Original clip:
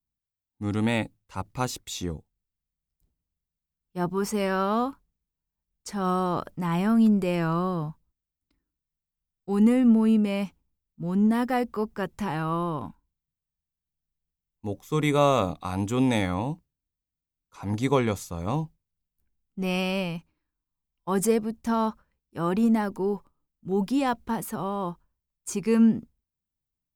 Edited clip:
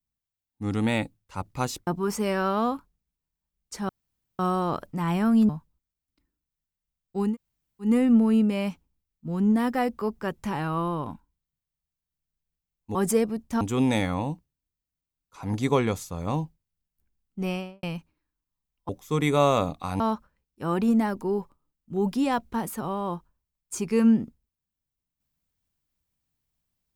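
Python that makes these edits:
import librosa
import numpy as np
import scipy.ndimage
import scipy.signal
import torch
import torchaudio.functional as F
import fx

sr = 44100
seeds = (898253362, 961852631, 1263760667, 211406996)

y = fx.studio_fade_out(x, sr, start_s=19.59, length_s=0.44)
y = fx.edit(y, sr, fx.cut(start_s=1.87, length_s=2.14),
    fx.insert_room_tone(at_s=6.03, length_s=0.5),
    fx.cut(start_s=7.13, length_s=0.69),
    fx.insert_room_tone(at_s=9.62, length_s=0.58, crossfade_s=0.16),
    fx.swap(start_s=14.7, length_s=1.11, other_s=21.09, other_length_s=0.66), tone=tone)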